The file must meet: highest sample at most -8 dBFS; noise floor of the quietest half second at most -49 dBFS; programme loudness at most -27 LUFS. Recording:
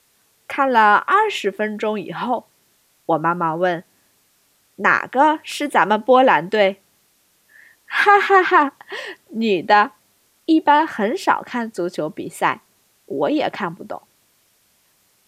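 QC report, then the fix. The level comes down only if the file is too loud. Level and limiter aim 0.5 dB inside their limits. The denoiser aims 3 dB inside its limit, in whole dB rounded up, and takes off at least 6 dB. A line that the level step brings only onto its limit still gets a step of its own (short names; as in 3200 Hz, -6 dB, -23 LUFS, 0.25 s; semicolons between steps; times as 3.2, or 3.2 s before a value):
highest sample -1.5 dBFS: fail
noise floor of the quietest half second -61 dBFS: OK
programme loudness -18.0 LUFS: fail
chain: gain -9.5 dB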